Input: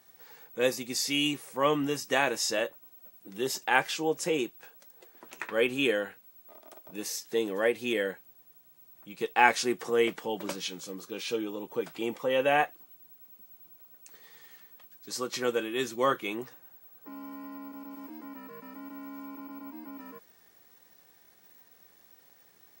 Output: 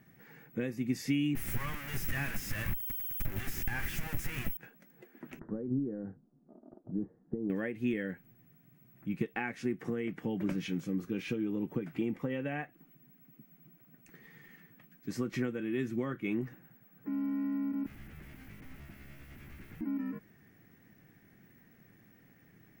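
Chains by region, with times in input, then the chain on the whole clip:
1.35–4.57 s: zero-crossing glitches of -15.5 dBFS + high-pass 930 Hz 24 dB/octave + valve stage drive 27 dB, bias 0.6
5.39–7.50 s: compression 10:1, threshold -34 dBFS + Gaussian low-pass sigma 9.7 samples
17.86–19.81 s: treble shelf 3.5 kHz -8.5 dB + integer overflow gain 48.5 dB
whole clip: tilt EQ -3 dB/octave; compression 10:1, threshold -31 dBFS; graphic EQ 125/250/500/1000/2000/4000/8000 Hz +4/+4/-8/-10/+7/-11/-6 dB; trim +3 dB

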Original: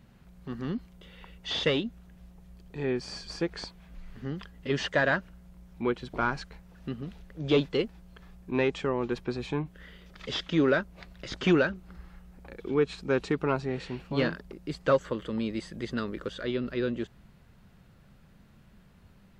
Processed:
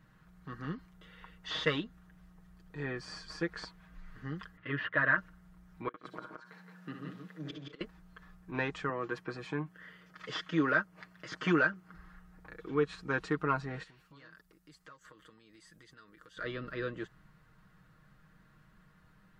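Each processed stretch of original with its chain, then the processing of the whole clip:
4.57–5.18 s: hard clipper -17.5 dBFS + cabinet simulation 100–2800 Hz, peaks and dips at 120 Hz +6 dB, 170 Hz -8 dB, 460 Hz -4 dB, 800 Hz -9 dB + tape noise reduction on one side only encoder only
5.88–7.81 s: high-pass 160 Hz 24 dB/octave + inverted gate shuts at -24 dBFS, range -29 dB + multi-tap echo 61/71/131/155/171/207 ms -8/-11/-18/-13.5/-4.5/-17 dB
8.89–11.94 s: high-pass 130 Hz + band-stop 3.8 kHz, Q 11
13.83–16.37 s: pre-emphasis filter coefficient 0.8 + compression, threshold -48 dBFS
whole clip: high-order bell 1.4 kHz +8.5 dB 1.1 oct; comb 6.4 ms; trim -8 dB

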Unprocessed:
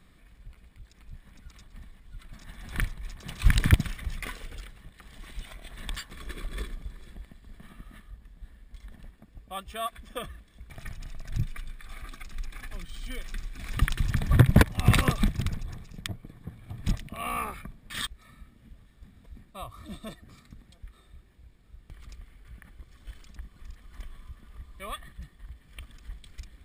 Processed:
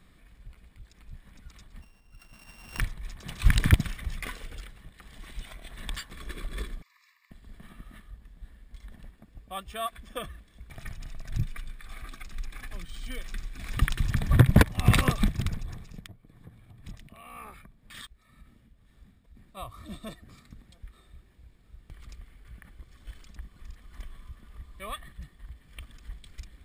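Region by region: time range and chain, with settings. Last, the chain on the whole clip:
1.81–2.80 s: sorted samples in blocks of 16 samples + bass shelf 270 Hz -9 dB + tape noise reduction on one side only decoder only
6.82–7.31 s: steep high-pass 1 kHz 96 dB/octave + static phaser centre 2.2 kHz, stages 8
15.99–19.57 s: tremolo 2 Hz, depth 66% + compression 2:1, threshold -49 dBFS
whole clip: none

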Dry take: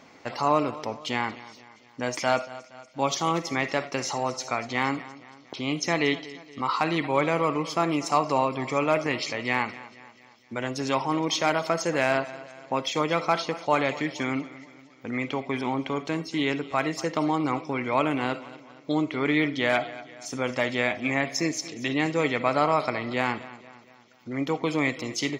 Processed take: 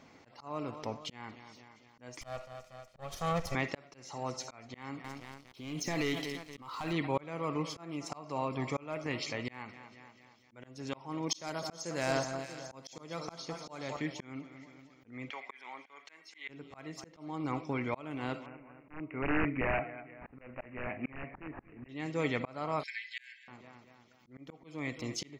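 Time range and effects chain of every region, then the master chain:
2.21–3.55 s: comb filter that takes the minimum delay 1.6 ms + peaking EQ 830 Hz +3 dB 0.85 oct
5.04–6.93 s: waveshaping leveller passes 2 + treble shelf 6.7 kHz +7 dB + compression 20:1, threshold -22 dBFS
11.29–13.97 s: resonant high shelf 3.7 kHz +8.5 dB, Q 1.5 + echo whose repeats swap between lows and highs 212 ms, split 1.6 kHz, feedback 63%, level -9 dB
15.30–16.49 s: high-pass 850 Hz + peaking EQ 2 kHz +10.5 dB 0.62 oct
18.46–21.89 s: integer overflow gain 16.5 dB + careless resampling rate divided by 8×, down none, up filtered
22.83–23.48 s: brick-wall FIR high-pass 1.5 kHz + comb 5 ms, depth 66%
whole clip: bass shelf 160 Hz +10 dB; slow attack 458 ms; trim -7.5 dB

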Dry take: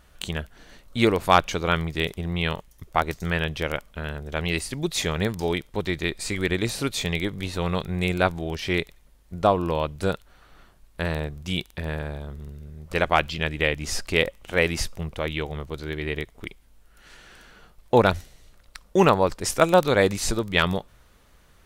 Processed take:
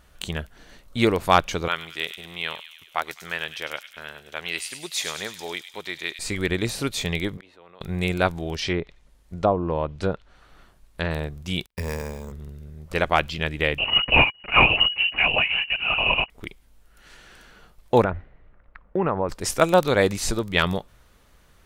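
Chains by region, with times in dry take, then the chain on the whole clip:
1.68–6.19 s: high-pass 1.2 kHz 6 dB/octave + feedback echo behind a high-pass 102 ms, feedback 61%, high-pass 2.9 kHz, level -7 dB
7.37–7.81 s: three-band isolator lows -20 dB, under 280 Hz, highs -16 dB, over 3.4 kHz + inverted gate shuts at -32 dBFS, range -26 dB + level flattener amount 50%
8.56–11.11 s: low-pass that closes with the level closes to 880 Hz, closed at -18.5 dBFS + dynamic bell 5 kHz, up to +7 dB, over -49 dBFS, Q 0.76
11.66–12.32 s: gate -43 dBFS, range -34 dB + rippled EQ curve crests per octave 0.88, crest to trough 10 dB + careless resampling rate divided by 6×, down none, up hold
13.78–16.30 s: waveshaping leveller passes 2 + frequency inversion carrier 2.9 kHz + LPC vocoder at 8 kHz whisper
18.04–19.29 s: low-pass 2 kHz 24 dB/octave + compression 2.5:1, threshold -20 dBFS
whole clip: none

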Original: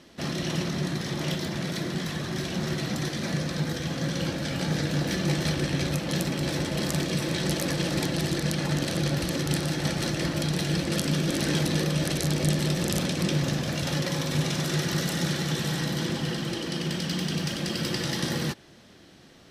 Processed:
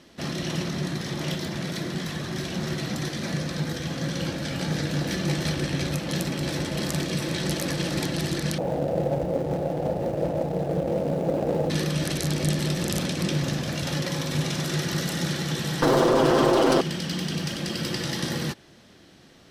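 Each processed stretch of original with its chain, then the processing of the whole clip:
8.58–11.70 s: median filter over 41 samples + high-order bell 610 Hz +13 dB 1.2 oct + hum notches 50/100/150/200/250/300/350/400 Hz
15.82–16.81 s: comb filter that takes the minimum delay 7.7 ms + high-order bell 620 Hz +14.5 dB 2.6 oct + level flattener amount 100%
whole clip: none

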